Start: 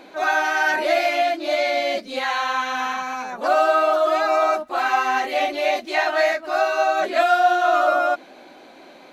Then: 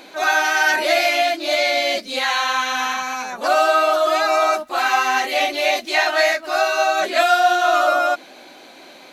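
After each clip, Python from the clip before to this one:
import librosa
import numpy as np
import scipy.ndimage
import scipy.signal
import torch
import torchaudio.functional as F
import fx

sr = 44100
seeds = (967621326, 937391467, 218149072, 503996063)

y = fx.high_shelf(x, sr, hz=2400.0, db=11.0)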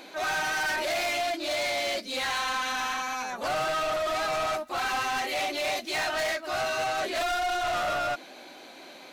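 y = 10.0 ** (-22.0 / 20.0) * np.tanh(x / 10.0 ** (-22.0 / 20.0))
y = y * librosa.db_to_amplitude(-4.0)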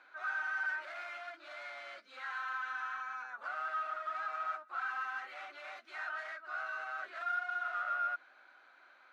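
y = fx.bandpass_q(x, sr, hz=1400.0, q=6.0)
y = y * librosa.db_to_amplitude(-1.5)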